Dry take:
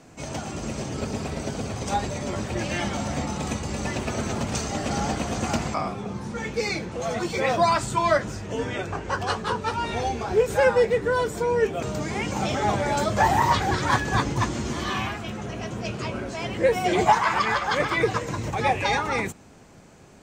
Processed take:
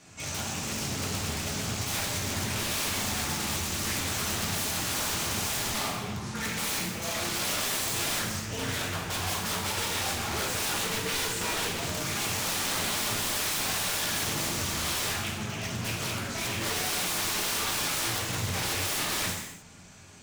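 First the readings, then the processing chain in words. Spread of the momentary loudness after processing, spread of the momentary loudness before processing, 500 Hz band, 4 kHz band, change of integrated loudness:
5 LU, 10 LU, -13.0 dB, +4.5 dB, -3.5 dB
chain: amplifier tone stack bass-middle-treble 5-5-5; integer overflow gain 37 dB; gated-style reverb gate 330 ms falling, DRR -3.5 dB; loudspeaker Doppler distortion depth 0.37 ms; trim +8 dB

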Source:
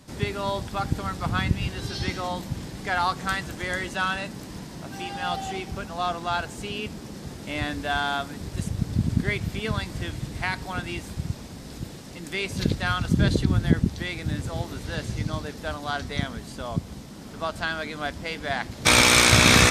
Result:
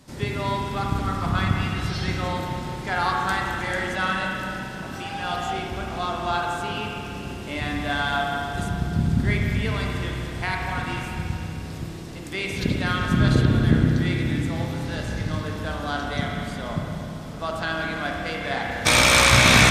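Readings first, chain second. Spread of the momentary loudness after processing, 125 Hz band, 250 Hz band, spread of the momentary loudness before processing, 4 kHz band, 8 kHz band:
12 LU, +3.5 dB, +2.5 dB, 13 LU, +0.5 dB, -1.0 dB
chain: spring tank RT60 3 s, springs 31/48 ms, chirp 55 ms, DRR -1.5 dB; trim -1 dB

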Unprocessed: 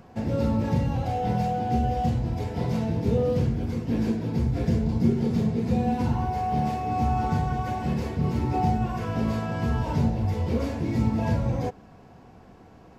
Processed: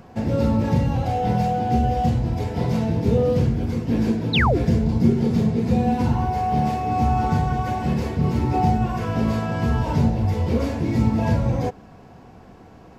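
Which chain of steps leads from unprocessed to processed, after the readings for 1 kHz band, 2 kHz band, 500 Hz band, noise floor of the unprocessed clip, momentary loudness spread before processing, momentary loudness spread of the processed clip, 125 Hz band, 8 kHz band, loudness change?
+4.5 dB, +8.5 dB, +5.0 dB, -50 dBFS, 4 LU, 5 LU, +4.5 dB, no reading, +4.5 dB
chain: painted sound fall, 4.33–4.58 s, 280–4300 Hz -25 dBFS; trim +4.5 dB

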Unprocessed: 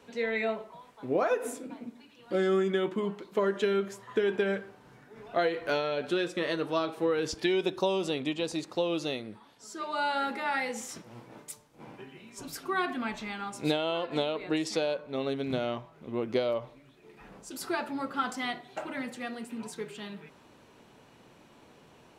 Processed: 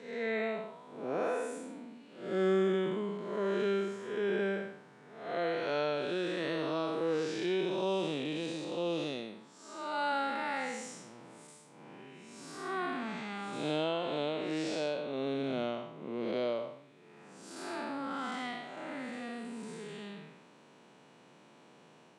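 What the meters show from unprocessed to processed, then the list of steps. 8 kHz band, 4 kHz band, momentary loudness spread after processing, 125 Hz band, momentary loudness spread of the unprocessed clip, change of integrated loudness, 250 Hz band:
-6.5 dB, -5.0 dB, 17 LU, -2.5 dB, 17 LU, -3.5 dB, -3.0 dB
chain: spectral blur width 240 ms; elliptic band-pass 150–9200 Hz, stop band 40 dB

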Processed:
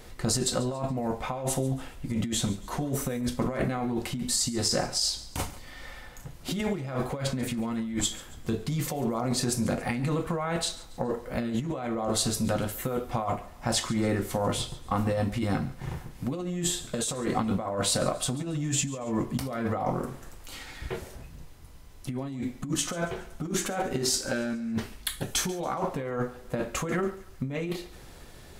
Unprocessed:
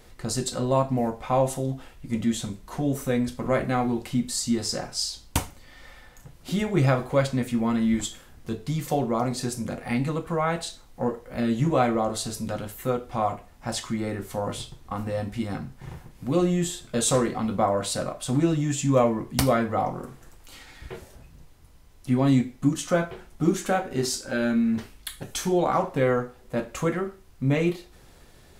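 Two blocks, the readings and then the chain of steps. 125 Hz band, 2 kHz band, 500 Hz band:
-4.0 dB, -3.0 dB, -5.5 dB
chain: compressor with a negative ratio -29 dBFS, ratio -1; thinning echo 140 ms, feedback 42%, level -18 dB

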